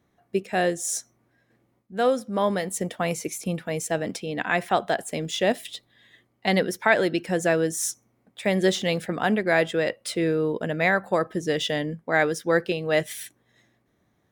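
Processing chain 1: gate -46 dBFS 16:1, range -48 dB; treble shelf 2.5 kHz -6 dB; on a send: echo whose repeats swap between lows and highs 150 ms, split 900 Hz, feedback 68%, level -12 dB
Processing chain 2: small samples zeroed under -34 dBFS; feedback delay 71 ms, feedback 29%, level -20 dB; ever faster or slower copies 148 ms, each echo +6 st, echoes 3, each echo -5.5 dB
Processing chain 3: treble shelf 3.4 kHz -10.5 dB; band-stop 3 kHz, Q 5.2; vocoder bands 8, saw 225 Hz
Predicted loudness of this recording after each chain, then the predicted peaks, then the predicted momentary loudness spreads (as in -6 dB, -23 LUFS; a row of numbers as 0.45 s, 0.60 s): -25.5 LUFS, -24.5 LUFS, -27.0 LUFS; -6.5 dBFS, -5.0 dBFS, -10.5 dBFS; 13 LU, 8 LU, 8 LU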